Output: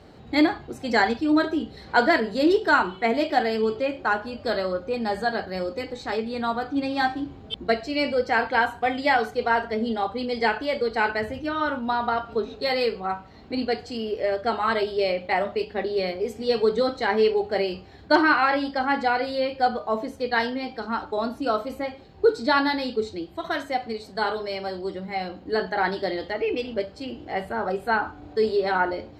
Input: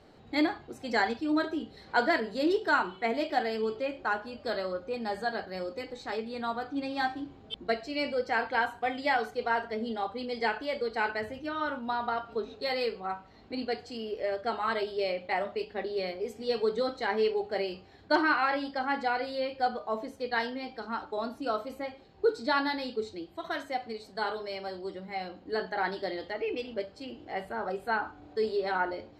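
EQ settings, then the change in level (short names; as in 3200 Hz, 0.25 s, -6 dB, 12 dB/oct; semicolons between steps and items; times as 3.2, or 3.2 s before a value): HPF 45 Hz; low shelf 120 Hz +9.5 dB; notches 50/100 Hz; +6.5 dB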